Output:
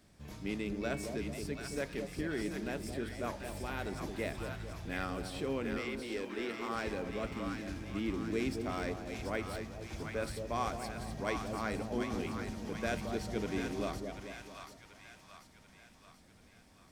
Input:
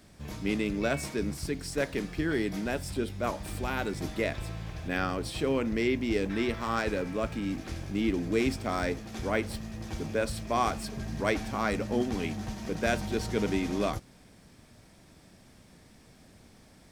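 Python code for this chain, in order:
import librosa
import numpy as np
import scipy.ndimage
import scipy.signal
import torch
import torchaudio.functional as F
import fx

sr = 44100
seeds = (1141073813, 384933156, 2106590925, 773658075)

p1 = fx.highpass(x, sr, hz=fx.line((5.77, 620.0), (6.74, 180.0)), slope=12, at=(5.77, 6.74), fade=0.02)
p2 = p1 + fx.echo_split(p1, sr, split_hz=850.0, low_ms=221, high_ms=736, feedback_pct=52, wet_db=-5.5, dry=0)
y = p2 * 10.0 ** (-8.0 / 20.0)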